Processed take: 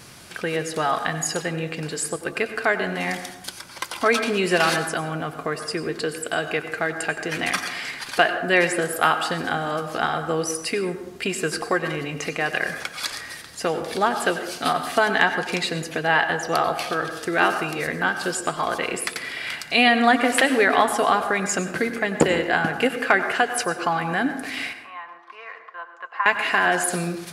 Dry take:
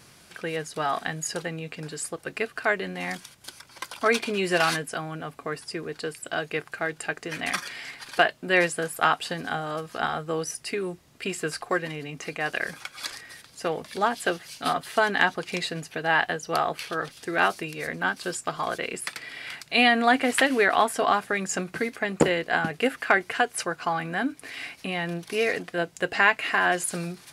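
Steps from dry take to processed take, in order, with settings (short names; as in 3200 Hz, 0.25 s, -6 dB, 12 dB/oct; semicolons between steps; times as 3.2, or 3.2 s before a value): in parallel at +1.5 dB: compressor, threshold -34 dBFS, peak gain reduction 18.5 dB; 24.73–26.26 on the sum: ladder band-pass 1100 Hz, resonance 85%; plate-style reverb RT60 0.94 s, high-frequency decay 0.4×, pre-delay 80 ms, DRR 8.5 dB; gain +1 dB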